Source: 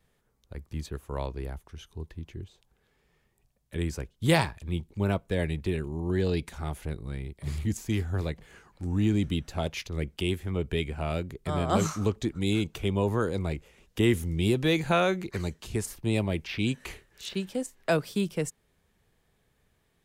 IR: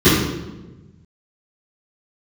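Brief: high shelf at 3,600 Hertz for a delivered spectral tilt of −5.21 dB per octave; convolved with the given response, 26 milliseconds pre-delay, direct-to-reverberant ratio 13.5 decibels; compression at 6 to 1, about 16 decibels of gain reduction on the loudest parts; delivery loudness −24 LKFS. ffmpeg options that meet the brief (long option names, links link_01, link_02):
-filter_complex "[0:a]highshelf=frequency=3600:gain=8,acompressor=threshold=-35dB:ratio=6,asplit=2[link_01][link_02];[1:a]atrim=start_sample=2205,adelay=26[link_03];[link_02][link_03]afir=irnorm=-1:irlink=0,volume=-40dB[link_04];[link_01][link_04]amix=inputs=2:normalize=0,volume=14.5dB"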